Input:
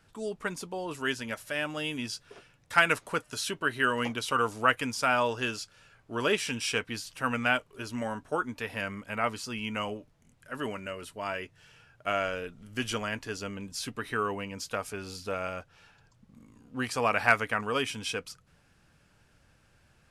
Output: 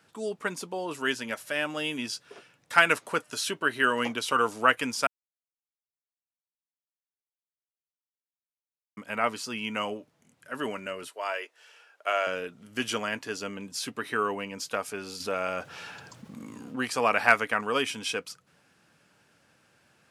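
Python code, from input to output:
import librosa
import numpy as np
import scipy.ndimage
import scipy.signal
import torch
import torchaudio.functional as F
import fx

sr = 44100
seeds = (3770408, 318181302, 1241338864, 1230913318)

y = fx.highpass(x, sr, hz=420.0, slope=24, at=(11.08, 12.27))
y = fx.env_flatten(y, sr, amount_pct=50, at=(15.2, 16.76))
y = fx.edit(y, sr, fx.silence(start_s=5.07, length_s=3.9), tone=tone)
y = scipy.signal.sosfilt(scipy.signal.butter(2, 190.0, 'highpass', fs=sr, output='sos'), y)
y = F.gain(torch.from_numpy(y), 2.5).numpy()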